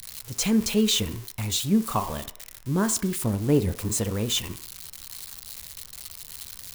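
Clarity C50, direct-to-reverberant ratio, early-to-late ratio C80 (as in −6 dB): 15.0 dB, 10.5 dB, 17.5 dB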